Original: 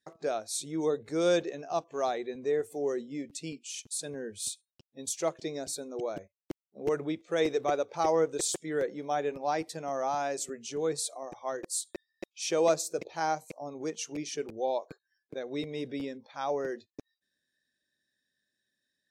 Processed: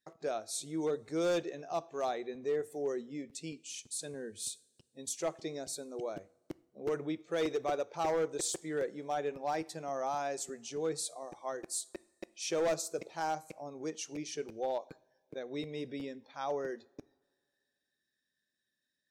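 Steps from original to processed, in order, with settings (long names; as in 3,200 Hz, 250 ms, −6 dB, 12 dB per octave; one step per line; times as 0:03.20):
coupled-rooms reverb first 0.52 s, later 2.1 s, from −18 dB, DRR 18 dB
hard clipping −22.5 dBFS, distortion −17 dB
level −4 dB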